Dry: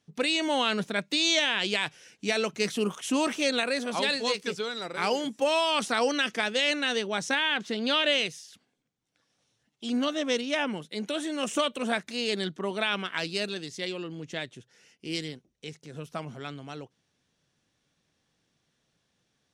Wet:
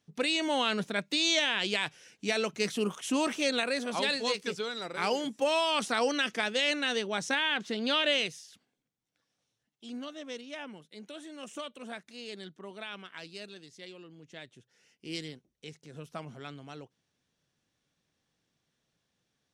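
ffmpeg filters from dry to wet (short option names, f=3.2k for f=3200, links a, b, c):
-af "volume=6dB,afade=t=out:st=8.23:d=1.83:silence=0.281838,afade=t=in:st=14.27:d=0.87:silence=0.375837"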